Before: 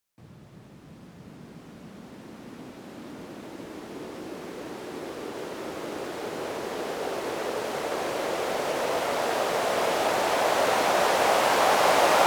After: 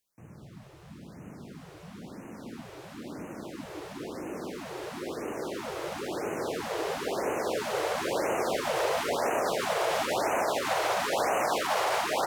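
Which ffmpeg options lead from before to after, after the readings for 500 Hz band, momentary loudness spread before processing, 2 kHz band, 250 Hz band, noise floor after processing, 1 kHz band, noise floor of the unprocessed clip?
-3.5 dB, 22 LU, -4.0 dB, -2.0 dB, -49 dBFS, -4.5 dB, -49 dBFS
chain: -af "alimiter=limit=0.112:level=0:latency=1:release=80,aecho=1:1:151.6|204.1:0.355|0.355,afftfilt=real='re*(1-between(b*sr/1024,210*pow(4300/210,0.5+0.5*sin(2*PI*0.99*pts/sr))/1.41,210*pow(4300/210,0.5+0.5*sin(2*PI*0.99*pts/sr))*1.41))':imag='im*(1-between(b*sr/1024,210*pow(4300/210,0.5+0.5*sin(2*PI*0.99*pts/sr))/1.41,210*pow(4300/210,0.5+0.5*sin(2*PI*0.99*pts/sr))*1.41))':win_size=1024:overlap=0.75"

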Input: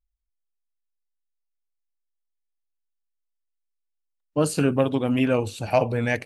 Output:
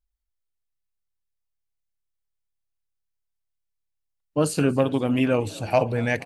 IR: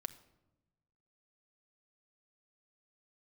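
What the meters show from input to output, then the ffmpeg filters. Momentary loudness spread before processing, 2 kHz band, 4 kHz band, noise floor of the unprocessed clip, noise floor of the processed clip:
4 LU, 0.0 dB, 0.0 dB, -79 dBFS, -79 dBFS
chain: -filter_complex "[0:a]asplit=6[s0][s1][s2][s3][s4][s5];[s1]adelay=236,afreqshift=36,volume=0.075[s6];[s2]adelay=472,afreqshift=72,volume=0.0473[s7];[s3]adelay=708,afreqshift=108,volume=0.0299[s8];[s4]adelay=944,afreqshift=144,volume=0.0188[s9];[s5]adelay=1180,afreqshift=180,volume=0.0117[s10];[s0][s6][s7][s8][s9][s10]amix=inputs=6:normalize=0"

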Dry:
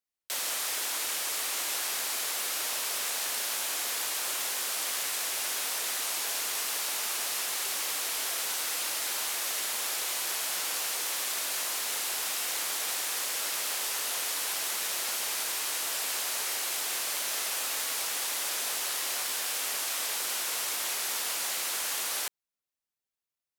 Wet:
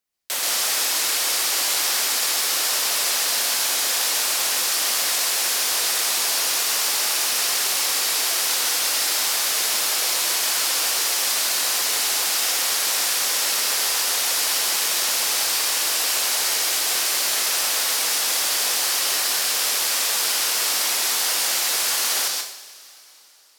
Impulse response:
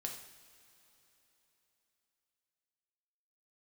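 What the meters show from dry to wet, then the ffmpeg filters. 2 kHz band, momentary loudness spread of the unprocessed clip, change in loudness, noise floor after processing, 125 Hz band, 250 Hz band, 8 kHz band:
+9.5 dB, 0 LU, +10.5 dB, -42 dBFS, no reading, +9.5 dB, +10.5 dB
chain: -filter_complex "[0:a]asplit=2[s0][s1];[s1]equalizer=f=5000:w=1.7:g=8[s2];[1:a]atrim=start_sample=2205,adelay=129[s3];[s2][s3]afir=irnorm=-1:irlink=0,volume=0.794[s4];[s0][s4]amix=inputs=2:normalize=0,volume=2.37"

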